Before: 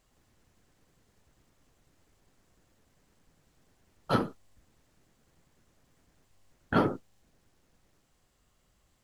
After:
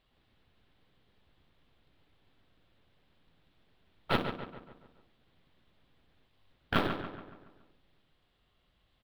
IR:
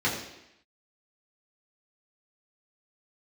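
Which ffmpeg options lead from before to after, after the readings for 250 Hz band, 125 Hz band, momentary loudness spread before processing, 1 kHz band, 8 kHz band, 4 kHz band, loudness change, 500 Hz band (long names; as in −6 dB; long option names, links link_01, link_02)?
−5.0 dB, −3.5 dB, 12 LU, −2.5 dB, −4.0 dB, +5.0 dB, −3.5 dB, −4.0 dB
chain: -filter_complex "[0:a]acrusher=bits=3:mode=log:mix=0:aa=0.000001,aeval=exprs='0.266*(cos(1*acos(clip(val(0)/0.266,-1,1)))-cos(1*PI/2))+0.0299*(cos(3*acos(clip(val(0)/0.266,-1,1)))-cos(3*PI/2))+0.0668*(cos(6*acos(clip(val(0)/0.266,-1,1)))-cos(6*PI/2))+0.0237*(cos(8*acos(clip(val(0)/0.266,-1,1)))-cos(8*PI/2))':channel_layout=same,highshelf=frequency=4900:width_type=q:width=3:gain=-11.5,acompressor=threshold=-22dB:ratio=6,asplit=2[link_01][link_02];[link_02]adelay=141,lowpass=frequency=3300:poles=1,volume=-8dB,asplit=2[link_03][link_04];[link_04]adelay=141,lowpass=frequency=3300:poles=1,volume=0.51,asplit=2[link_05][link_06];[link_06]adelay=141,lowpass=frequency=3300:poles=1,volume=0.51,asplit=2[link_07][link_08];[link_08]adelay=141,lowpass=frequency=3300:poles=1,volume=0.51,asplit=2[link_09][link_10];[link_10]adelay=141,lowpass=frequency=3300:poles=1,volume=0.51,asplit=2[link_11][link_12];[link_12]adelay=141,lowpass=frequency=3300:poles=1,volume=0.51[link_13];[link_03][link_05][link_07][link_09][link_11][link_13]amix=inputs=6:normalize=0[link_14];[link_01][link_14]amix=inputs=2:normalize=0"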